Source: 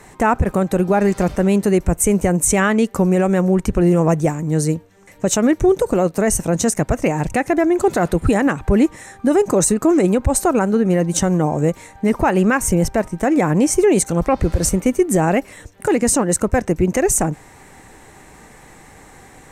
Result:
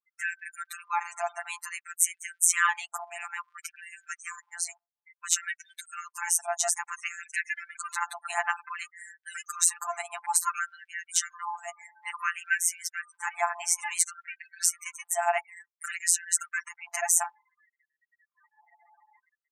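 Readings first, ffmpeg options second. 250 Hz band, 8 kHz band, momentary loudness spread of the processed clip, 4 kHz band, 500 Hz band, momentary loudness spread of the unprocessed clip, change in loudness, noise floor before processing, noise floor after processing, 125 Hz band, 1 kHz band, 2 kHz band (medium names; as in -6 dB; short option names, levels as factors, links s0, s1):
under -40 dB, -4.5 dB, 16 LU, -5.5 dB, -24.0 dB, 5 LU, -12.0 dB, -45 dBFS, under -85 dBFS, under -40 dB, -10.0 dB, -5.0 dB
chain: -af "afftfilt=real='re*gte(hypot(re,im),0.02)':imag='im*gte(hypot(re,im),0.02)':win_size=1024:overlap=0.75,afftfilt=real='hypot(re,im)*cos(PI*b)':imag='0':win_size=1024:overlap=0.75,afftfilt=real='re*gte(b*sr/1024,650*pow(1500/650,0.5+0.5*sin(2*PI*0.57*pts/sr)))':imag='im*gte(b*sr/1024,650*pow(1500/650,0.5+0.5*sin(2*PI*0.57*pts/sr)))':win_size=1024:overlap=0.75,volume=0.891"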